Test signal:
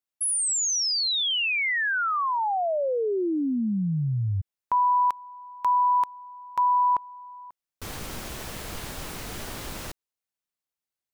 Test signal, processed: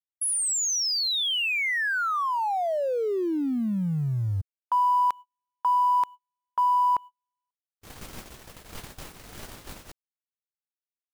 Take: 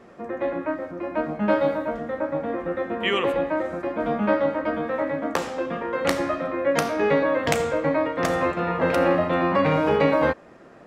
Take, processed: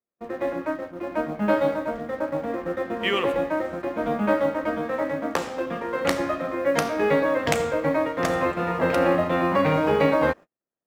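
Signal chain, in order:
mu-law and A-law mismatch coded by A
noise gate −36 dBFS, range −40 dB

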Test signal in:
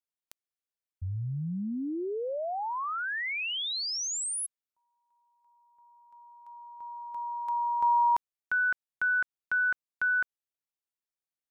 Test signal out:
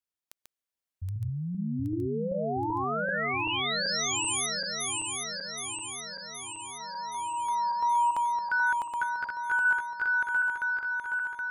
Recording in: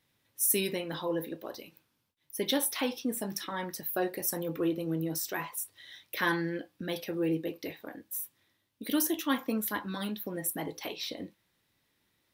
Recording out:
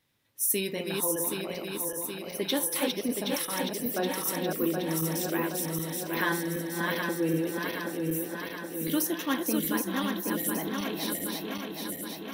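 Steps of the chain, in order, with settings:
feedback delay that plays each chunk backwards 386 ms, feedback 79%, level −3 dB

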